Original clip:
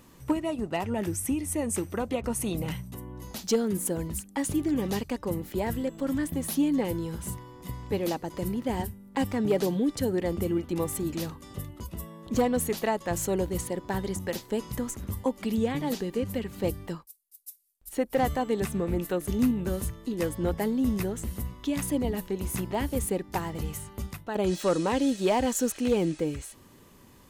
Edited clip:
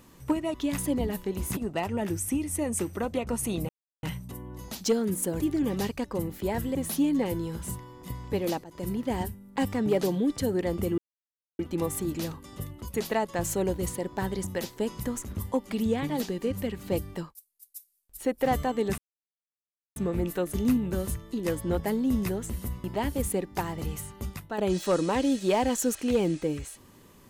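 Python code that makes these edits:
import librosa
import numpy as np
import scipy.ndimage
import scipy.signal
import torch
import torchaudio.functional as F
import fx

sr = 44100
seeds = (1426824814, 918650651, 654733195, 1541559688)

y = fx.edit(x, sr, fx.insert_silence(at_s=2.66, length_s=0.34),
    fx.cut(start_s=4.03, length_s=0.49),
    fx.cut(start_s=5.87, length_s=0.47),
    fx.fade_in_from(start_s=8.23, length_s=0.29, floor_db=-15.0),
    fx.insert_silence(at_s=10.57, length_s=0.61),
    fx.cut(start_s=11.92, length_s=0.74),
    fx.insert_silence(at_s=18.7, length_s=0.98),
    fx.move(start_s=21.58, length_s=1.03, to_s=0.54), tone=tone)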